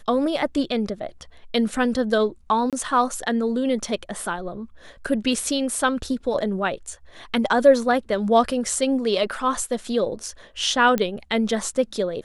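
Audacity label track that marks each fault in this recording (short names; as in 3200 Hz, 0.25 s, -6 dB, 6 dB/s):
2.700000	2.730000	gap 27 ms
10.980000	10.980000	pop -10 dBFS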